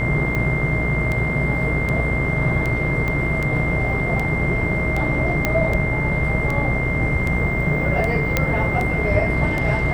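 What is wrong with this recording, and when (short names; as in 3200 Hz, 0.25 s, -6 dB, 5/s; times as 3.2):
buzz 60 Hz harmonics 37 -26 dBFS
tick 78 rpm -12 dBFS
tone 2100 Hz -24 dBFS
3.08 pop -13 dBFS
5.45 pop -5 dBFS
8.37 pop -3 dBFS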